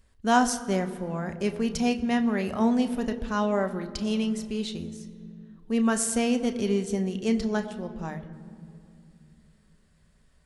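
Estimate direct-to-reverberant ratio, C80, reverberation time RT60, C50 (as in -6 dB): 7.0 dB, 13.5 dB, 2.5 s, 13.0 dB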